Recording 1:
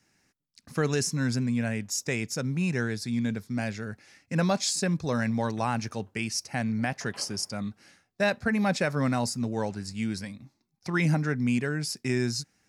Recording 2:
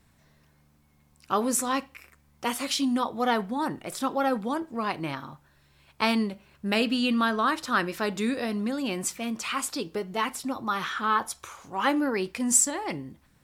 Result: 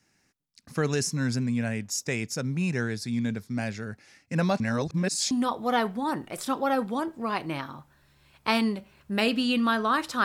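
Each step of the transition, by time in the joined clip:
recording 1
4.60–5.31 s: reverse
5.31 s: go over to recording 2 from 2.85 s

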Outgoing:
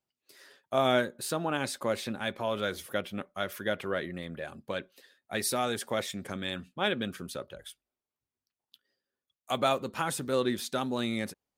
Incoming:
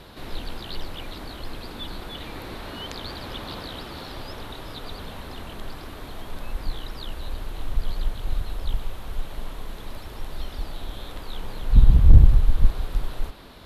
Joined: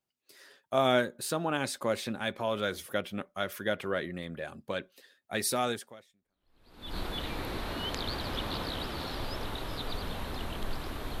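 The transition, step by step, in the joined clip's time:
outgoing
6.34 s: go over to incoming from 1.31 s, crossfade 1.26 s exponential

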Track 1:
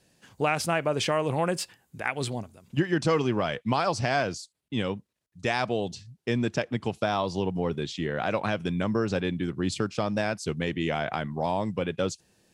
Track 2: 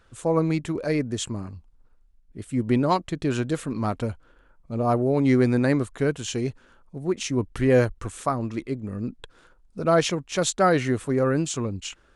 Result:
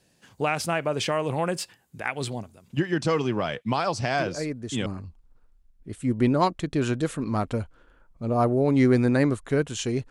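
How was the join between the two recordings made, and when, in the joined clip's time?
track 1
4.18 s: add track 2 from 0.67 s 0.68 s -6.5 dB
4.86 s: go over to track 2 from 1.35 s

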